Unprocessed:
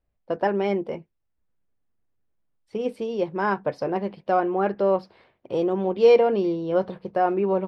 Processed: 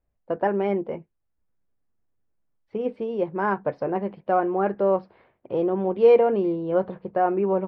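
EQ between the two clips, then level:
low-pass filter 2,100 Hz 12 dB per octave
0.0 dB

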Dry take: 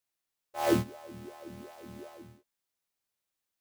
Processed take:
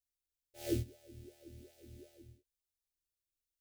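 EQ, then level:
guitar amp tone stack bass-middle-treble 10-0-1
phaser with its sweep stopped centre 440 Hz, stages 4
+14.0 dB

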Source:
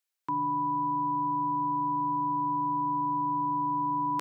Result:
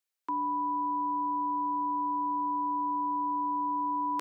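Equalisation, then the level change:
elliptic high-pass filter 210 Hz, stop band 60 dB
−1.0 dB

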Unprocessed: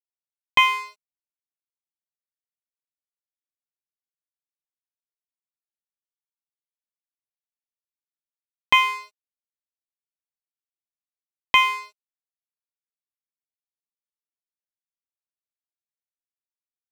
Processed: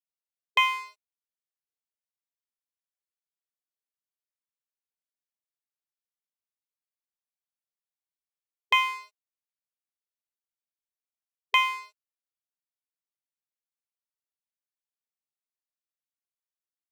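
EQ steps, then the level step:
linear-phase brick-wall high-pass 420 Hz
−5.5 dB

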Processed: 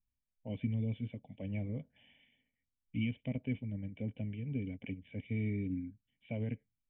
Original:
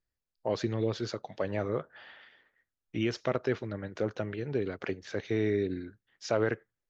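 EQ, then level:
formant resonators in series i
low-shelf EQ 160 Hz +7.5 dB
phaser with its sweep stopped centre 1,300 Hz, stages 6
+8.0 dB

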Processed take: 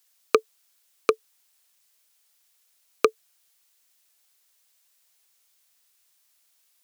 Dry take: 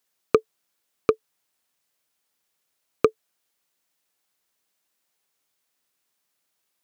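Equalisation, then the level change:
high-pass filter 380 Hz 12 dB per octave
high-shelf EQ 2,100 Hz +10.5 dB
0.0 dB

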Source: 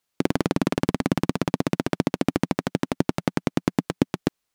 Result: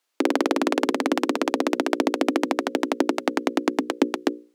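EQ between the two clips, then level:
Butterworth high-pass 260 Hz 48 dB per octave
high-shelf EQ 9,300 Hz −6 dB
mains-hum notches 60/120/180/240/300/360/420/480/540 Hz
+4.5 dB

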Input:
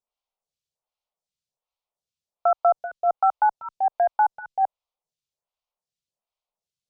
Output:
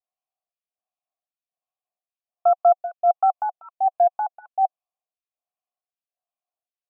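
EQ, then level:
formant filter a
+5.0 dB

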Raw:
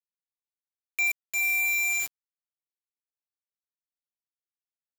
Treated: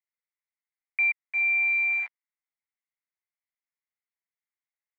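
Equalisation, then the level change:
high-pass with resonance 860 Hz, resonance Q 1.8
transistor ladder low-pass 2,200 Hz, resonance 80%
+5.0 dB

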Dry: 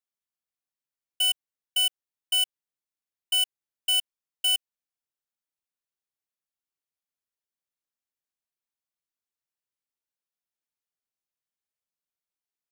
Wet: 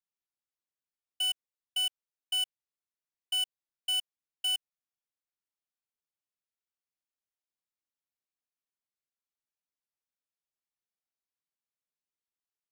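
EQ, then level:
high-shelf EQ 11,000 Hz −9 dB
−5.5 dB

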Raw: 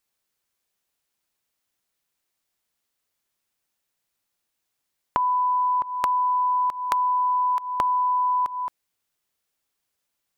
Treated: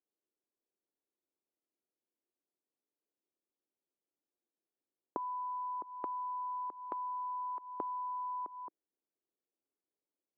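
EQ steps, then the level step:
four-pole ladder band-pass 400 Hz, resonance 45%
low-shelf EQ 470 Hz +8.5 dB
0.0 dB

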